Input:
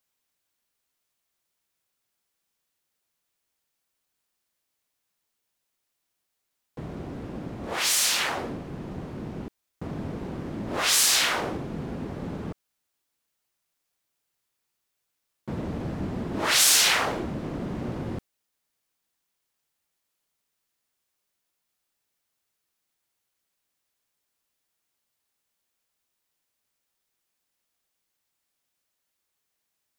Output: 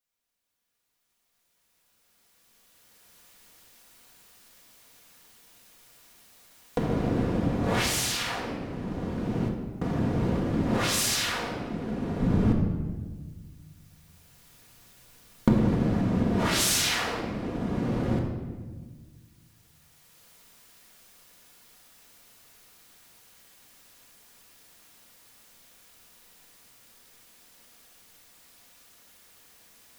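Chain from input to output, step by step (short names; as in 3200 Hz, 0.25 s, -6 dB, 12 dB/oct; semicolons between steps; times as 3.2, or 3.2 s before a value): recorder AGC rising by 9.4 dB/s; 12.2–15.52 low shelf 210 Hz +11 dB; reverb RT60 1.5 s, pre-delay 4 ms, DRR 0 dB; gain -8.5 dB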